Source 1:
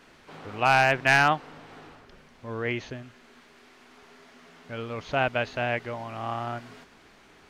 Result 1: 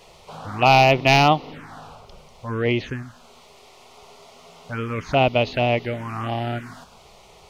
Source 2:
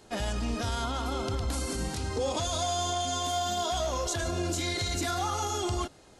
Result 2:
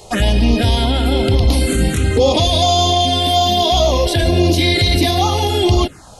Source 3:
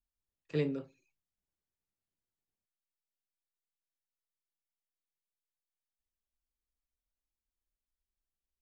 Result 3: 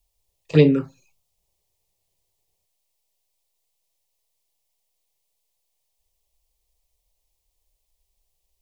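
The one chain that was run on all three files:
touch-sensitive phaser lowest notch 250 Hz, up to 1.6 kHz, full sweep at -26 dBFS; peak normalisation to -2 dBFS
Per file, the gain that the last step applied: +10.5 dB, +18.5 dB, +19.5 dB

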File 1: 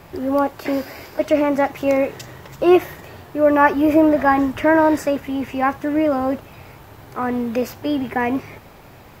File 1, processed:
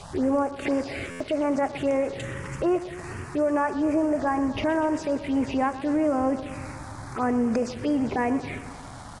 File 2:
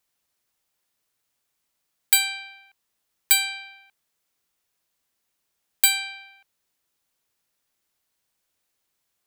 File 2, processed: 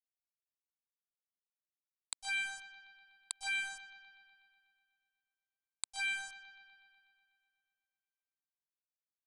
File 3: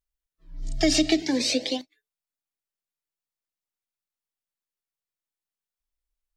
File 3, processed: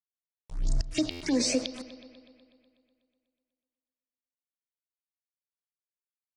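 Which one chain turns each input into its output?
compression 16:1, threshold -26 dBFS; transient shaper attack -5 dB, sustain 0 dB; inverted gate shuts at -18 dBFS, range -28 dB; small samples zeroed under -43.5 dBFS; touch-sensitive phaser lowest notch 240 Hz, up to 3.8 kHz, full sweep at -27 dBFS; on a send: bucket-brigade echo 123 ms, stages 4096, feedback 68%, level -15 dB; on the sum: resampled via 22.05 kHz; buffer glitch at 1.10 s, samples 512, times 8; trim +6.5 dB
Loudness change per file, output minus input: -7.5 LU, -17.5 LU, -6.0 LU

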